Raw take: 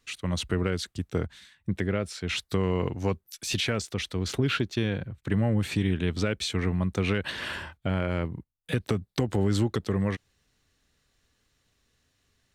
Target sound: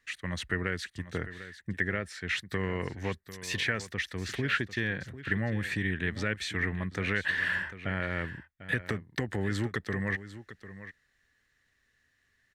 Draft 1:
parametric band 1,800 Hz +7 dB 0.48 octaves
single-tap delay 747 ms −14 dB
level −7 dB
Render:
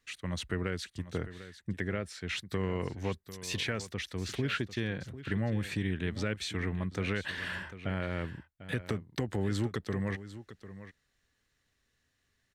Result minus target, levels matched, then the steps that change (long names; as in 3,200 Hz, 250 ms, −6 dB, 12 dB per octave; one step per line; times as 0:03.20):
2,000 Hz band −5.0 dB
change: parametric band 1,800 Hz +18.5 dB 0.48 octaves